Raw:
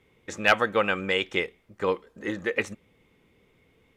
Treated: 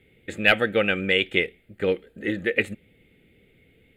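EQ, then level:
phaser with its sweep stopped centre 2,500 Hz, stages 4
+5.5 dB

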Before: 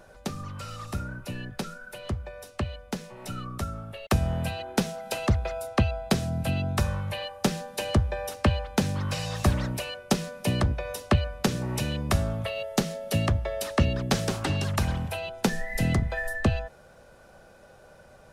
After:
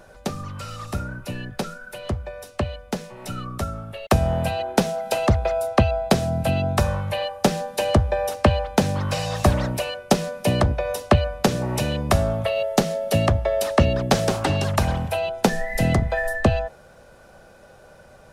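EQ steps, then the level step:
dynamic equaliser 660 Hz, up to +7 dB, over −43 dBFS, Q 1.2
+4.0 dB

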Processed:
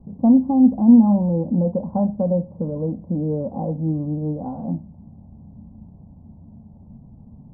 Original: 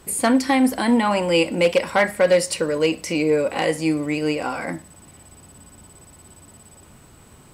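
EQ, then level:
Butterworth low-pass 870 Hz 48 dB per octave
low shelf with overshoot 280 Hz +8.5 dB, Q 3
−4.0 dB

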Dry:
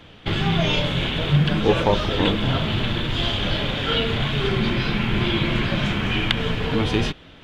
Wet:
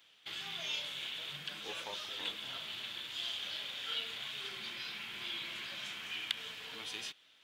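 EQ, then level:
first difference
−6.0 dB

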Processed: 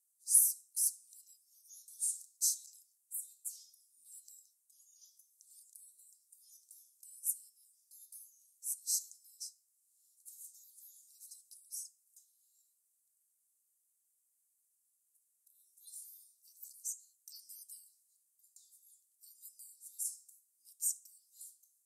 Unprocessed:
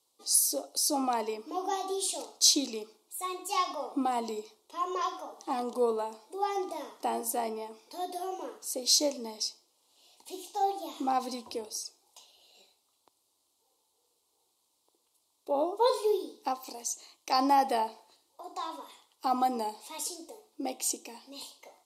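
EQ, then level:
inverse Chebyshev high-pass filter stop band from 1,900 Hz, stop band 70 dB
0.0 dB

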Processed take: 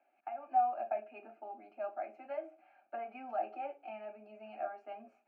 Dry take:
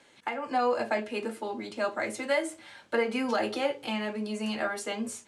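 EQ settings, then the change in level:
formant filter a
high-frequency loss of the air 300 metres
phaser with its sweep stopped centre 720 Hz, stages 8
+2.5 dB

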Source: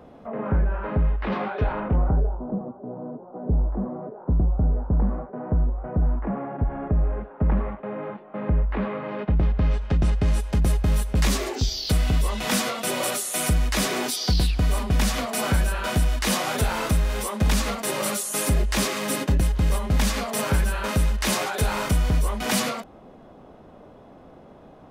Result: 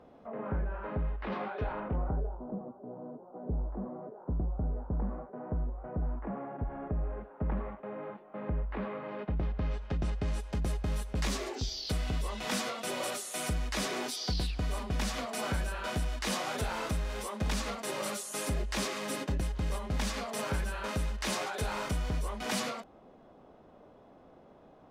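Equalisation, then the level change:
bass and treble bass −4 dB, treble +7 dB
high-shelf EQ 5,200 Hz −9.5 dB
high-shelf EQ 11,000 Hz −10 dB
−8.0 dB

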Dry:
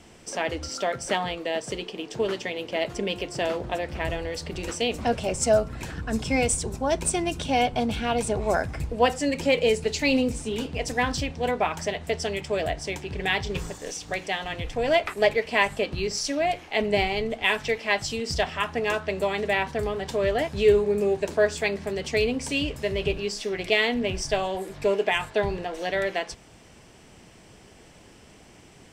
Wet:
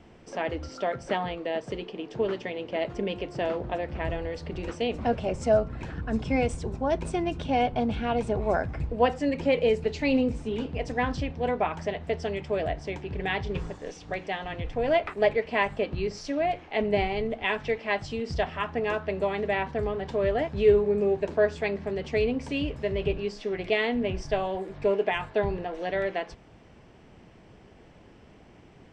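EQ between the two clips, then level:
head-to-tape spacing loss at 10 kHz 25 dB
0.0 dB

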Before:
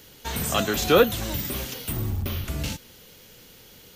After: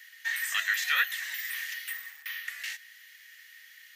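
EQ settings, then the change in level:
four-pole ladder high-pass 1,800 Hz, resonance 90%
+6.0 dB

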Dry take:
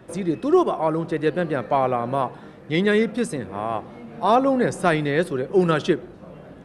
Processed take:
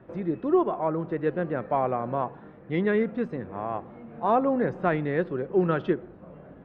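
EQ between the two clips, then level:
low-pass filter 2,100 Hz 12 dB per octave
high-frequency loss of the air 130 metres
−4.5 dB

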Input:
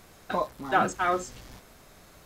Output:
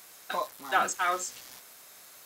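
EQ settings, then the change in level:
high-pass filter 1,100 Hz 6 dB per octave
high-shelf EQ 4,300 Hz +5 dB
high-shelf EQ 9,400 Hz +6.5 dB
+1.0 dB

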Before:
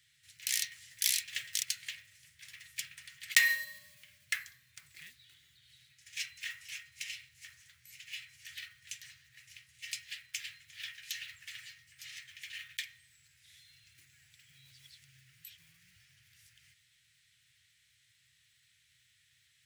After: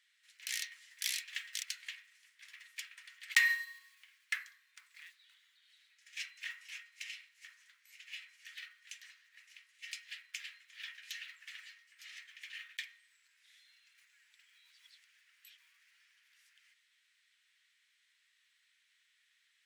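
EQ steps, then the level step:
linear-phase brick-wall high-pass 850 Hz
spectral tilt −3.5 dB per octave
+2.0 dB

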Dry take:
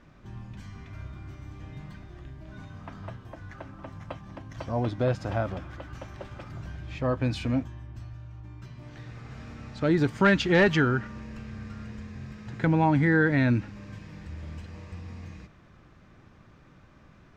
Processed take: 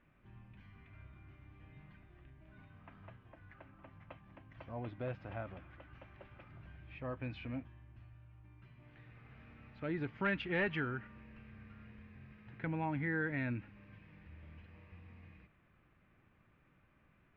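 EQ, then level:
transistor ladder low-pass 3,000 Hz, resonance 45%
−6.5 dB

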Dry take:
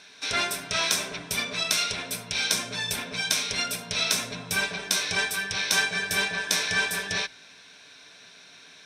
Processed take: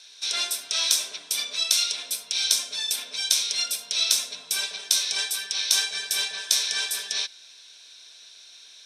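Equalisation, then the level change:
high-pass filter 410 Hz 12 dB per octave
flat-topped bell 6,500 Hz +13.5 dB 2.5 octaves
−9.0 dB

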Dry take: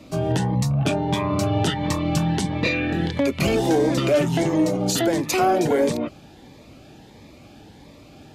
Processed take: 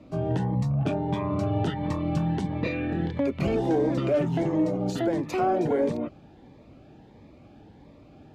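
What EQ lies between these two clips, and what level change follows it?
low-pass filter 1,100 Hz 6 dB per octave
−4.0 dB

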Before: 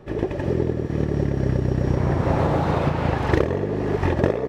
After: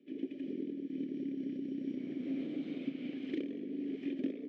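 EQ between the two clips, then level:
formant filter i
high-pass filter 190 Hz 24 dB per octave
flat-topped bell 1,500 Hz −8 dB 1.2 octaves
−4.0 dB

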